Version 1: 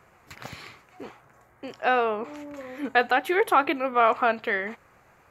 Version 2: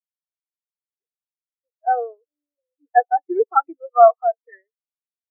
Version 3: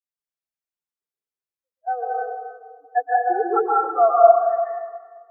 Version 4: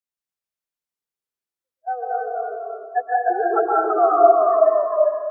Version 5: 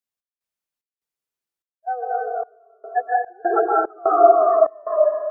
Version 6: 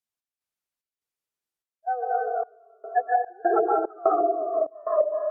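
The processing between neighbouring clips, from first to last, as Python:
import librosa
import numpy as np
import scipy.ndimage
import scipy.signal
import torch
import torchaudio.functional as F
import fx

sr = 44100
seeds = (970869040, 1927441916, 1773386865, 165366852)

y1 = scipy.signal.sosfilt(scipy.signal.ellip(4, 1.0, 40, 300.0, 'highpass', fs=sr, output='sos'), x)
y1 = fx.spectral_expand(y1, sr, expansion=4.0)
y1 = F.gain(torch.from_numpy(y1), 5.5).numpy()
y2 = fx.rev_plate(y1, sr, seeds[0], rt60_s=1.6, hf_ratio=0.55, predelay_ms=115, drr_db=-5.0)
y2 = F.gain(torch.from_numpy(y2), -6.5).numpy()
y3 = fx.echo_pitch(y2, sr, ms=124, semitones=-1, count=2, db_per_echo=-3.0)
y3 = F.gain(torch.from_numpy(y3), -1.0).numpy()
y4 = fx.dynamic_eq(y3, sr, hz=1000.0, q=4.0, threshold_db=-37.0, ratio=4.0, max_db=-4)
y4 = fx.step_gate(y4, sr, bpm=74, pattern='x.xx.xxx.xxx..x', floor_db=-24.0, edge_ms=4.5)
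y4 = F.gain(torch.from_numpy(y4), 1.0).numpy()
y5 = fx.env_lowpass_down(y4, sr, base_hz=370.0, full_db=-12.0)
y5 = F.gain(torch.from_numpy(y5), -1.5).numpy()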